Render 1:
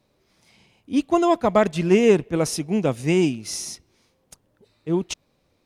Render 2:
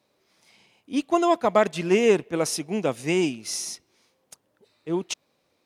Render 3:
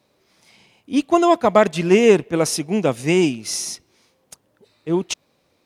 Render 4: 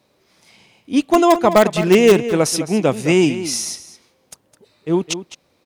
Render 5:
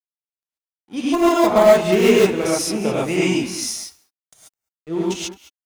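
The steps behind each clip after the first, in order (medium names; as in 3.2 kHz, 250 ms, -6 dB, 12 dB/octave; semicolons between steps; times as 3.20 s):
high-pass 380 Hz 6 dB/octave
bass shelf 160 Hz +6.5 dB; trim +5 dB
in parallel at -10 dB: integer overflow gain 5 dB; on the sum: echo from a far wall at 36 m, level -12 dB
crossover distortion -37.5 dBFS; gated-style reverb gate 160 ms rising, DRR -7.5 dB; trim -9.5 dB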